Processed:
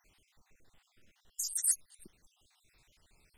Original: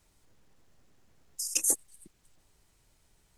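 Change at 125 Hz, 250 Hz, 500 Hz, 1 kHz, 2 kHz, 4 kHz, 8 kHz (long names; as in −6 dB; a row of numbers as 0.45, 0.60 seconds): can't be measured, below −10 dB, below −20 dB, below −10 dB, −10.5 dB, −5.5 dB, −3.0 dB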